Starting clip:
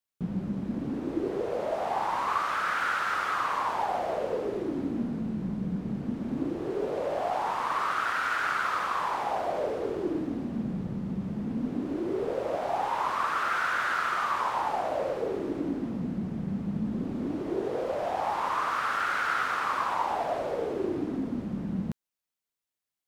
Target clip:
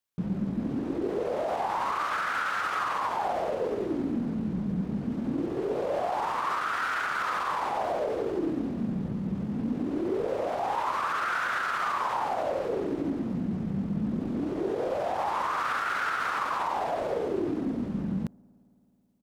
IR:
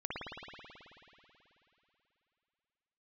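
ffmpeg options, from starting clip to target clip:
-filter_complex "[0:a]alimiter=limit=0.0794:level=0:latency=1:release=31,atempo=1.2,asplit=2[s0][s1];[1:a]atrim=start_sample=2205,lowpass=1200[s2];[s1][s2]afir=irnorm=-1:irlink=0,volume=0.0422[s3];[s0][s3]amix=inputs=2:normalize=0,volume=1.19"

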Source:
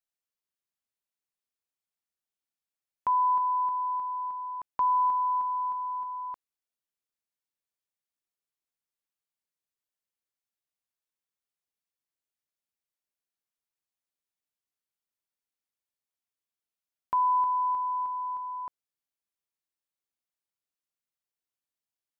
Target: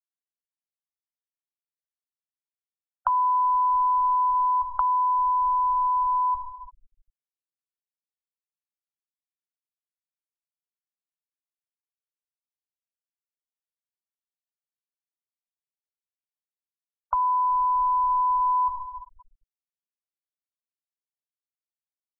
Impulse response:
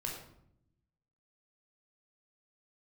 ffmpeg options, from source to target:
-filter_complex "[0:a]asplit=2[s0][s1];[1:a]atrim=start_sample=2205,asetrate=22491,aresample=44100,adelay=13[s2];[s1][s2]afir=irnorm=-1:irlink=0,volume=0.447[s3];[s0][s3]amix=inputs=2:normalize=0,asubboost=boost=9:cutoff=50,apsyclip=14.1,lowpass=f=1000:p=1,acrossover=split=86|340|710[s4][s5][s6][s7];[s4]acompressor=threshold=0.0126:ratio=4[s8];[s5]acompressor=threshold=0.001:ratio=4[s9];[s6]acompressor=threshold=0.00708:ratio=4[s10];[s7]acompressor=threshold=0.178:ratio=4[s11];[s8][s9][s10][s11]amix=inputs=4:normalize=0,aphaser=in_gain=1:out_gain=1:delay=1:decay=0.29:speed=0.13:type=triangular,afftfilt=real='re*gte(hypot(re,im),0.1)':imag='im*gte(hypot(re,im),0.1)':win_size=1024:overlap=0.75,acompressor=threshold=0.141:ratio=6,volume=0.668"

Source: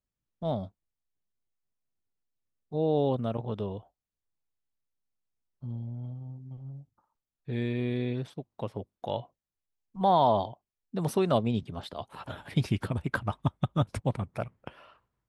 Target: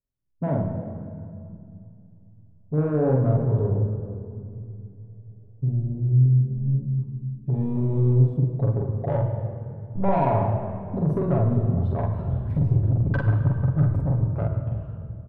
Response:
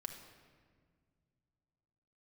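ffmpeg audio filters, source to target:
-filter_complex "[0:a]asubboost=boost=4.5:cutoff=92,afwtdn=0.02,tiltshelf=f=1300:g=10,bandreject=f=760:w=12,acompressor=threshold=0.0398:ratio=4,asoftclip=type=tanh:threshold=0.0596,asplit=2[s0][s1];[s1]adelay=46,volume=0.794[s2];[s0][s2]amix=inputs=2:normalize=0[s3];[1:a]atrim=start_sample=2205,asetrate=29106,aresample=44100[s4];[s3][s4]afir=irnorm=-1:irlink=0,volume=2.24"

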